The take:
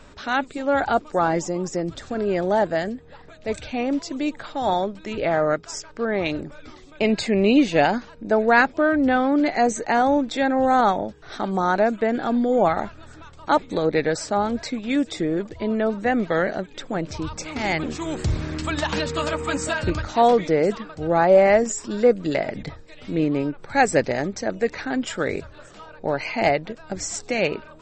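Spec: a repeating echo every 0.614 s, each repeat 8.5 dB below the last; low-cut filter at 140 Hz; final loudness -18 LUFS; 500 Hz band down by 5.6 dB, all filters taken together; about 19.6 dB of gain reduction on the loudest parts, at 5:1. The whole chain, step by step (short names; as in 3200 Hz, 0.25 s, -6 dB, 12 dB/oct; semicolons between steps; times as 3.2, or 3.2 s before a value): HPF 140 Hz; bell 500 Hz -7 dB; compressor 5:1, threshold -37 dBFS; feedback echo 0.614 s, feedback 38%, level -8.5 dB; gain +21 dB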